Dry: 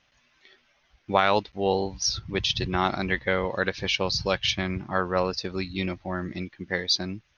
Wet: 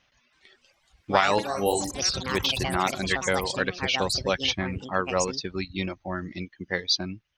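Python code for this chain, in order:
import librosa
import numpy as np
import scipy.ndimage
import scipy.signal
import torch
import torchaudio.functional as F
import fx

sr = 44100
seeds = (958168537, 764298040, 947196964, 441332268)

y = fx.room_flutter(x, sr, wall_m=5.9, rt60_s=0.42, at=(1.34, 1.97))
y = fx.dereverb_blind(y, sr, rt60_s=0.88)
y = fx.echo_pitch(y, sr, ms=326, semitones=6, count=3, db_per_echo=-6.0)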